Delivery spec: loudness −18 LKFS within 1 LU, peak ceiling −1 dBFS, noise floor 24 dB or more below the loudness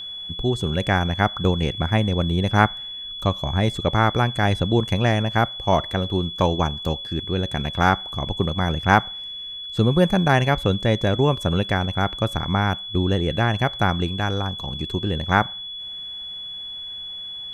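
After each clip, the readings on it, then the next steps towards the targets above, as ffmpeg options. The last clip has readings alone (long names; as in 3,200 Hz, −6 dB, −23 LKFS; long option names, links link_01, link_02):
interfering tone 3,400 Hz; level of the tone −31 dBFS; integrated loudness −22.5 LKFS; sample peak −1.5 dBFS; target loudness −18.0 LKFS
→ -af "bandreject=frequency=3400:width=30"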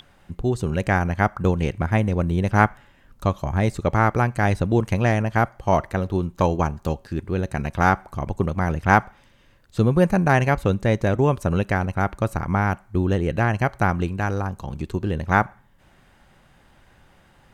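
interfering tone none found; integrated loudness −22.5 LKFS; sample peak −2.0 dBFS; target loudness −18.0 LKFS
→ -af "volume=4.5dB,alimiter=limit=-1dB:level=0:latency=1"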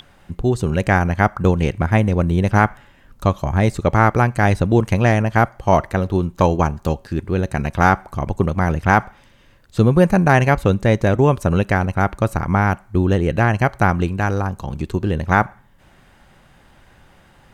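integrated loudness −18.0 LKFS; sample peak −1.0 dBFS; background noise floor −51 dBFS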